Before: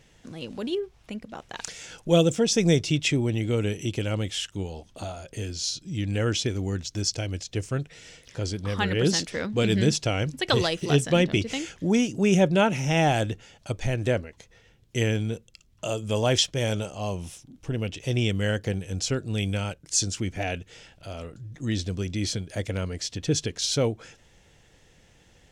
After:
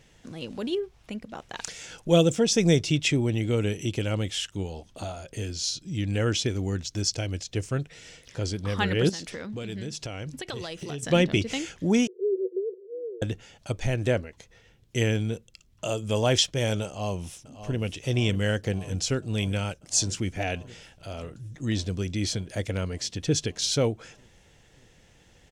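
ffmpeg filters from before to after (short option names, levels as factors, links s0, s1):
-filter_complex "[0:a]asettb=1/sr,asplit=3[s0][s1][s2];[s0]atrim=end=9.094[s3];[s1]atrim=start=9.09:end=11.03,asetpts=PTS-STARTPTS,afade=t=in:d=0.004:c=qsin,afade=t=out:st=1.936:d=0.004:c=qsin,acompressor=threshold=0.0251:ratio=6:attack=3.2:release=140:knee=1:detection=peak[s4];[s2]atrim=start=11.026[s5];[s3][s4]acrossfade=d=0.004:c1=hsin:c2=qsin[s6];[s6][s5]acrossfade=d=0.004:c1=qsin:c2=hsin,asettb=1/sr,asplit=3[s7][s8][s9];[s7]atrim=end=12.074[s10];[s8]atrim=start=12.07:end=13.22,asetpts=PTS-STARTPTS,afade=t=in:d=0.004:c=qsin,afade=t=out:st=1.146:d=0.004:c=qsin,asuperpass=centerf=420:order=12:qfactor=3.2[s11];[s9]atrim=start=13.216[s12];[s10][s11]acrossfade=d=0.004:c1=hsin:c2=qsin[s13];[s13][s12]acrossfade=d=0.004:c1=qsin:c2=hsin,asplit=2[s14][s15];[s15]afade=t=in:st=16.86:d=0.01,afade=t=out:st=17.79:d=0.01,aecho=0:1:590|1180|1770|2360|2950|3540|4130|4720|5310|5900|6490|7080:0.251189|0.200951|0.160761|0.128609|0.102887|0.0823095|0.0658476|0.0526781|0.0421425|0.033714|0.0269712|0.0215769[s16];[s14][s16]amix=inputs=2:normalize=0"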